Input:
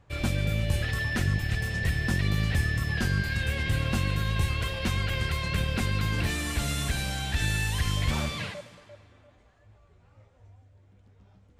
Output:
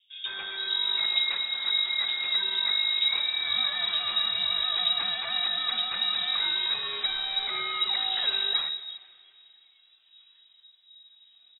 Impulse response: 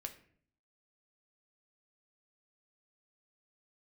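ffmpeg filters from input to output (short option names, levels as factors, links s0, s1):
-filter_complex "[0:a]acrossover=split=200|1200[s0][s1][s2];[s2]adelay=150[s3];[s0]adelay=460[s4];[s4][s1][s3]amix=inputs=3:normalize=0,lowpass=f=3300:t=q:w=0.5098,lowpass=f=3300:t=q:w=0.6013,lowpass=f=3300:t=q:w=0.9,lowpass=f=3300:t=q:w=2.563,afreqshift=-3900"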